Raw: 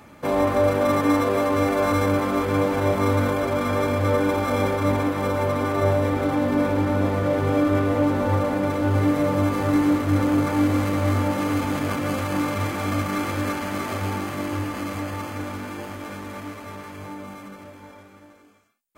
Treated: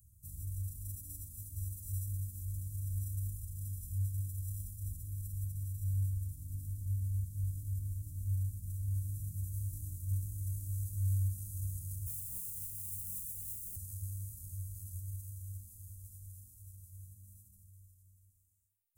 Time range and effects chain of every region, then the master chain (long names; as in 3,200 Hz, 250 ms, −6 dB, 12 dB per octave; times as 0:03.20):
0:12.06–0:13.76: phaser with its sweep stopped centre 430 Hz, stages 8 + noise that follows the level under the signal 10 dB
whole clip: inverse Chebyshev band-stop filter 440–2,000 Hz, stop band 80 dB; parametric band 4,200 Hz −3.5 dB 1.7 octaves; mains-hum notches 50/100/150/200/250/300 Hz; level −1 dB